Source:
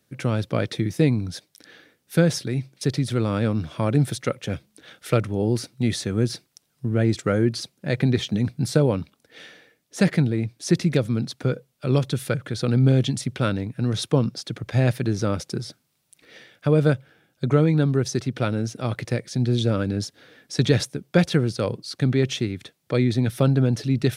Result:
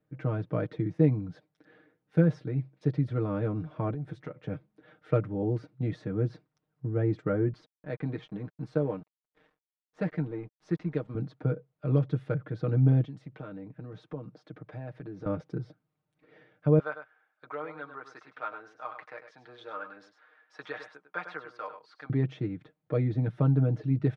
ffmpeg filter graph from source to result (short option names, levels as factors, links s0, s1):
-filter_complex "[0:a]asettb=1/sr,asplit=3[s0][s1][s2];[s0]atrim=end=3.934[s3];[s1]atrim=start=3.93:end=4.41,asetpts=PTS-STARTPTS,afade=t=in:d=0.004:c=qsin,afade=t=out:st=0.476:d=0.004:c=qsin,acompressor=threshold=0.0447:ratio=12:attack=3.2:release=140:knee=1:detection=peak,asplit=2[s4][s5];[s5]adelay=12,volume=0.282[s6];[s4][s6]amix=inputs=2:normalize=0,atrim=end_sample=21168[s7];[s2]atrim=start=4.406[s8];[s3][s7]acrossfade=d=0.004:c1=hsin:c2=qsin[s9];[s9][s8]acrossfade=d=0.004:c1=qsin:c2=hsin,asettb=1/sr,asplit=3[s10][s11][s12];[s10]atrim=end=7.534[s13];[s11]atrim=start=7.53:end=11.15,asetpts=PTS-STARTPTS,afade=t=in:d=0.004:c=qsin,afade=t=out:st=3.616:d=0.004:c=qsin,highpass=f=330:p=1,equalizer=f=680:t=o:w=0.97:g=-2.5,aeval=exprs='sgn(val(0))*max(abs(val(0))-0.00631,0)':c=same[s14];[s12]atrim=start=11.146[s15];[s13][s14]acrossfade=d=0.004:c1=hsin:c2=qsin[s16];[s16][s15]acrossfade=d=0.004:c1=qsin:c2=hsin,asettb=1/sr,asplit=3[s17][s18][s19];[s17]atrim=end=13.044[s20];[s18]atrim=start=13.04:end=15.26,asetpts=PTS-STARTPTS,afade=t=in:d=0.004:c=qsin,afade=t=out:st=2.216:d=0.004:c=qsin,highpass=100,lowshelf=f=170:g=-7.5,acompressor=threshold=0.02:ratio=2.5:attack=3.2:release=140:knee=1:detection=peak[s21];[s19]atrim=start=15.256[s22];[s20][s21]acrossfade=d=0.004:c1=hsin:c2=qsin[s23];[s23][s22]acrossfade=d=0.004:c1=qsin:c2=hsin,asettb=1/sr,asplit=3[s24][s25][s26];[s24]atrim=end=16.794[s27];[s25]atrim=start=16.79:end=22.1,asetpts=PTS-STARTPTS,afade=t=in:d=0.004:c=qsin,afade=t=out:st=5.306:d=0.004:c=qsin,highpass=f=1100:t=q:w=1.9,aecho=1:1:101:0.335,atrim=end_sample=234171[s28];[s26]atrim=start=22.096[s29];[s27][s28]acrossfade=d=0.004:c1=hsin:c2=qsin[s30];[s30][s29]acrossfade=d=0.004:c1=qsin:c2=hsin,lowpass=1300,aecho=1:1:6.5:0.78,volume=0.398"